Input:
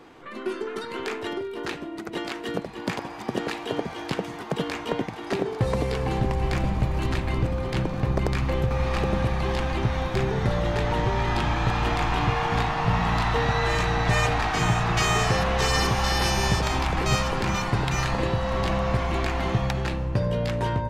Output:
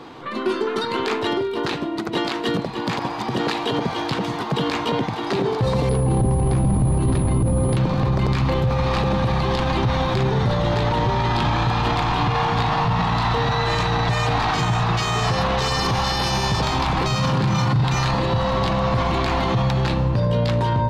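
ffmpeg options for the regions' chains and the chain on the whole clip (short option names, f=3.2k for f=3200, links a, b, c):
-filter_complex "[0:a]asettb=1/sr,asplit=3[a][b][c];[a]atrim=end=5.894[d];[b]atrim=start=5.89:end=7.77,asetpts=PTS-STARTPTS,afade=t=in:d=0.004:c=qsin,afade=t=out:st=1.876:d=0.004:c=qsin,tiltshelf=f=900:g=8.5,aeval=exprs='val(0)+0.0224*sin(2*PI*10000*n/s)':c=same[e];[c]atrim=start=7.766[f];[d][e]acrossfade=d=0.004:c1=hsin:c2=qsin[g];[g][f]acrossfade=d=0.004:c1=qsin:c2=hsin,asettb=1/sr,asplit=3[h][i][j];[h]atrim=end=17.174[k];[i]atrim=start=17.17:end=17.84,asetpts=PTS-STARTPTS,afade=t=in:d=0.004:c=qsin,afade=t=out:st=0.666:d=0.004:c=qsin,highpass=98,equalizer=f=140:w=1.5:g=14.5,asplit=2[l][m];[m]adelay=34,volume=-4.5dB[n];[l][n]amix=inputs=2:normalize=0,atrim=end_sample=29547[o];[j]atrim=start=17.836[p];[k][o]acrossfade=d=0.004:c1=hsin:c2=qsin[q];[q][p]acrossfade=d=0.004:c1=qsin:c2=hsin,equalizer=f=125:t=o:w=1:g=9,equalizer=f=250:t=o:w=1:g=5,equalizer=f=500:t=o:w=1:g=3,equalizer=f=1k:t=o:w=1:g=8,equalizer=f=4k:t=o:w=1:g=10,alimiter=limit=-15.5dB:level=0:latency=1:release=25,volume=3dB"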